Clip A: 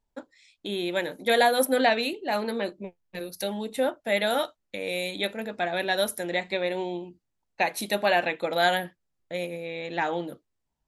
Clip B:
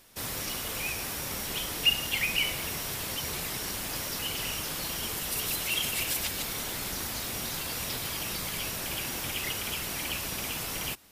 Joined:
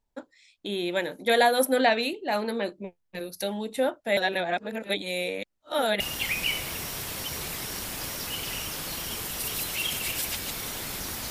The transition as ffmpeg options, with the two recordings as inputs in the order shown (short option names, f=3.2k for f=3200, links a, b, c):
-filter_complex "[0:a]apad=whole_dur=11.3,atrim=end=11.3,asplit=2[a][b];[a]atrim=end=4.172[c];[b]atrim=start=4.168:end=6.002,asetpts=PTS-STARTPTS,areverse[d];[1:a]atrim=start=1.918:end=7.22[e];[c][d]acrossfade=d=0.004:c1=hsin:c2=hsin[f];[f][e]acrossfade=d=0.004:c1=hsin:c2=hsin"